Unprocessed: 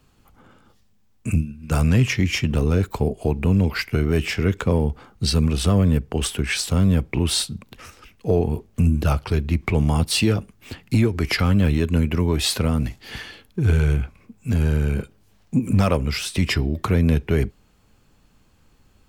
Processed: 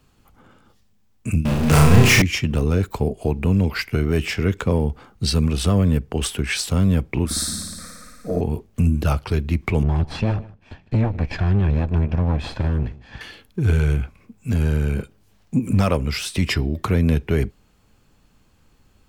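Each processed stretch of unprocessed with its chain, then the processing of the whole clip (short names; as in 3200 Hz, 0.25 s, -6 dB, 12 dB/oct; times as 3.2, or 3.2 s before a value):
1.45–2.22 power-law curve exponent 0.35 + flutter echo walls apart 5.8 m, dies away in 0.59 s
7.25–8.41 fixed phaser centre 580 Hz, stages 8 + flutter echo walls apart 9.7 m, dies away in 1.5 s
9.83–13.21 minimum comb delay 1.2 ms + tape spacing loss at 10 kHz 28 dB + echo 0.152 s -20 dB
whole clip: dry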